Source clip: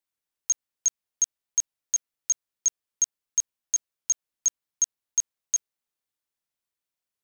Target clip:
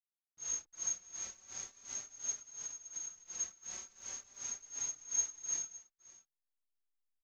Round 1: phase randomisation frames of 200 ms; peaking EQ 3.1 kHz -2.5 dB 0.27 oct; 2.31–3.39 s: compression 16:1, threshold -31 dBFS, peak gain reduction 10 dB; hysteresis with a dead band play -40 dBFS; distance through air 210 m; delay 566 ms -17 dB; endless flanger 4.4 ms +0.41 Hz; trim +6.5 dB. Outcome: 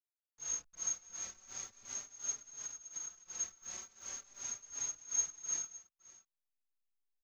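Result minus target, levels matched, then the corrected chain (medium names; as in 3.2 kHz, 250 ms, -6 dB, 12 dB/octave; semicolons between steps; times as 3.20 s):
hysteresis with a dead band: distortion +9 dB
phase randomisation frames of 200 ms; peaking EQ 3.1 kHz -2.5 dB 0.27 oct; 2.31–3.39 s: compression 16:1, threshold -31 dBFS, peak gain reduction 10 dB; hysteresis with a dead band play -49.5 dBFS; distance through air 210 m; delay 566 ms -17 dB; endless flanger 4.4 ms +0.41 Hz; trim +6.5 dB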